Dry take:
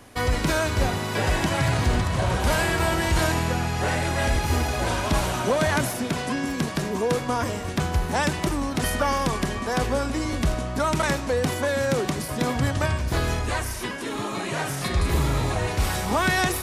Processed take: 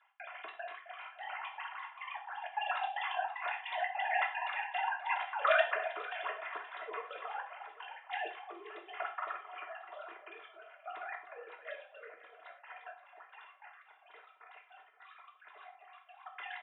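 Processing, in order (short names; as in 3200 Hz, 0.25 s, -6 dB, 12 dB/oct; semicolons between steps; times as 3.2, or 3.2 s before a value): sine-wave speech; Doppler pass-by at 4.69, 6 m/s, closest 7.3 m; comb 2.9 ms, depth 90%; formant shift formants +2 st; step gate "x.xxx.xx.xx.xx" 152 bpm -60 dB; band-pass 1200 Hz, Q 0.95; tilt shelf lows -4 dB, about 1400 Hz; echo with dull and thin repeats by turns 0.264 s, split 1100 Hz, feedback 60%, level -10 dB; non-linear reverb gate 0.14 s falling, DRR 1.5 dB; gain -6 dB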